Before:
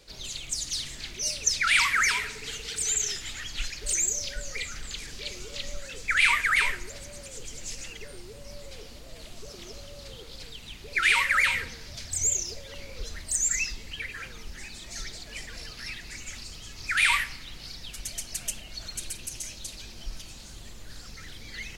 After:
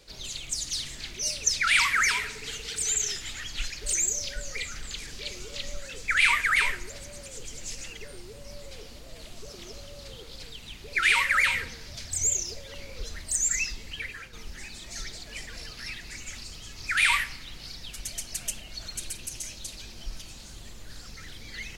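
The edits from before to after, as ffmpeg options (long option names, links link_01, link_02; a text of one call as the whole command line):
ffmpeg -i in.wav -filter_complex "[0:a]asplit=2[link_01][link_02];[link_01]atrim=end=14.33,asetpts=PTS-STARTPTS,afade=type=out:start_time=14.07:duration=0.26:silence=0.375837[link_03];[link_02]atrim=start=14.33,asetpts=PTS-STARTPTS,afade=type=in:duration=0.004:curve=hsin:silence=0.375837[link_04];[link_03][link_04]concat=n=2:v=0:a=1" out.wav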